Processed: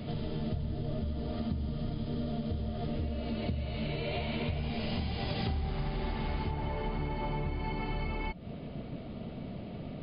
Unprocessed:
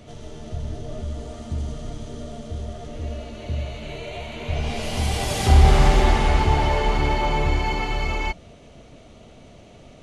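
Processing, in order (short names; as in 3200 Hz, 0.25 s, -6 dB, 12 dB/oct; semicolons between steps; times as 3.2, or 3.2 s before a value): brick-wall FIR low-pass 5100 Hz; bell 180 Hz +10.5 dB 1.6 oct; compressor 16:1, threshold -30 dBFS, peak gain reduction 25 dB; high shelf 3900 Hz +6 dB, from 6.51 s -6 dB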